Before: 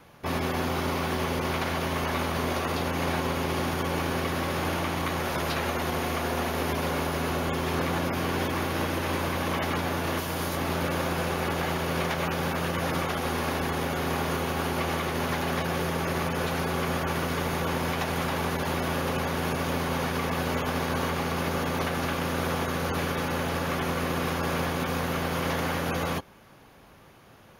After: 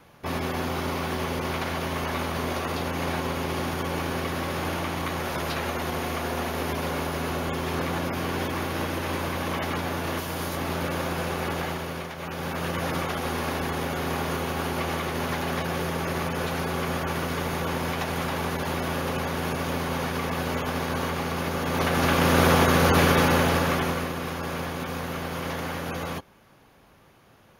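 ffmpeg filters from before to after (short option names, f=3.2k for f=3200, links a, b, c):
-af "volume=18dB,afade=t=out:st=11.57:d=0.56:silence=0.375837,afade=t=in:st=12.13:d=0.57:silence=0.354813,afade=t=in:st=21.61:d=0.78:silence=0.334965,afade=t=out:st=23.17:d=0.96:silence=0.237137"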